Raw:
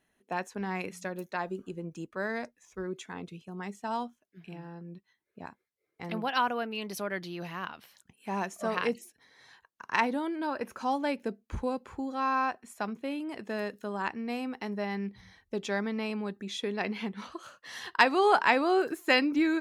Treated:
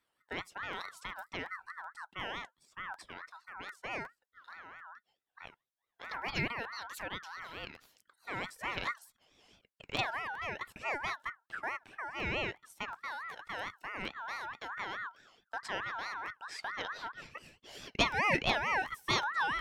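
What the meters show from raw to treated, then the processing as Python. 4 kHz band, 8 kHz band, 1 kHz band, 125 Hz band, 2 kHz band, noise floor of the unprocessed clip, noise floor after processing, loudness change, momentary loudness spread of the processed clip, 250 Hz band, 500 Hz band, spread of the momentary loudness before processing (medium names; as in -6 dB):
-1.0 dB, -3.0 dB, -7.0 dB, -4.0 dB, -2.5 dB, -80 dBFS, under -85 dBFS, -6.0 dB, 18 LU, -14.5 dB, -11.5 dB, 18 LU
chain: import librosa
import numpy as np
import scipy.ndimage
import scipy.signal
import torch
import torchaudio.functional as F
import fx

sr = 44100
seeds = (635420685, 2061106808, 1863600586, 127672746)

y = fx.buffer_crackle(x, sr, first_s=0.71, period_s=0.37, block=512, kind='repeat')
y = fx.ring_lfo(y, sr, carrier_hz=1400.0, swing_pct=20, hz=4.6)
y = F.gain(torch.from_numpy(y), -4.0).numpy()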